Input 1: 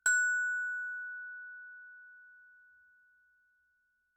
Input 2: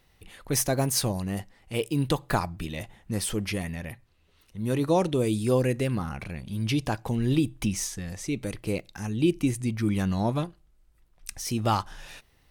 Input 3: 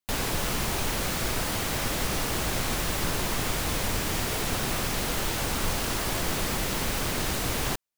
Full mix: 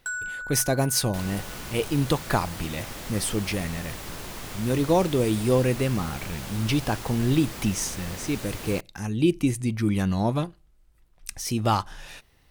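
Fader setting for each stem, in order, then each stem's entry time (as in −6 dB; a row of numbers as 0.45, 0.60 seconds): −3.5, +2.0, −9.0 decibels; 0.00, 0.00, 1.05 seconds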